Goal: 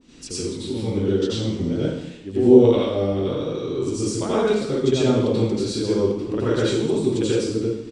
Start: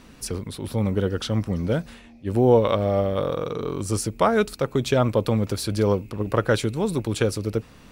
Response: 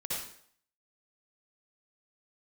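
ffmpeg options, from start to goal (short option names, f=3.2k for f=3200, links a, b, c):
-filter_complex "[0:a]firequalizer=gain_entry='entry(130,0);entry(300,11);entry(600,-1);entry(1200,-2);entry(3200,9);entry(7900,9);entry(13000,-24)':delay=0.05:min_phase=1[a];[1:a]atrim=start_sample=2205,asetrate=32193,aresample=44100[b];[a][b]afir=irnorm=-1:irlink=0,adynamicequalizer=threshold=0.0316:dfrequency=1600:dqfactor=0.7:tfrequency=1600:tqfactor=0.7:attack=5:release=100:ratio=0.375:range=2:mode=cutabove:tftype=highshelf,volume=-8.5dB"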